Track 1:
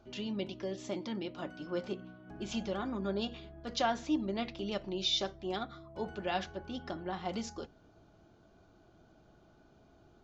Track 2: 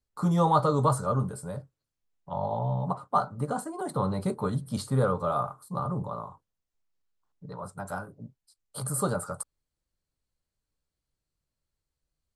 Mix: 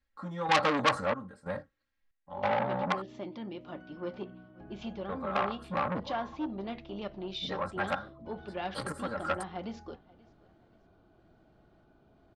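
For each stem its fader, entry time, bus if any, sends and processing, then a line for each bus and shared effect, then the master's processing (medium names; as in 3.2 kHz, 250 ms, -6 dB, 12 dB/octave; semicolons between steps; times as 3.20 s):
-3.5 dB, 2.30 s, no send, echo send -24 dB, treble shelf 2.5 kHz -7.5 dB
0.0 dB, 0.00 s, muted 3.02–5.09 s, no send, no echo send, peaking EQ 1.8 kHz +12.5 dB 0.6 oct; comb 3.7 ms, depth 82%; trance gate "xx....xxxxxx" 185 bpm -12 dB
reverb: none
echo: feedback delay 532 ms, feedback 35%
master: Chebyshev low-pass 3.6 kHz, order 2; gain riding within 4 dB 2 s; transformer saturation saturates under 2.8 kHz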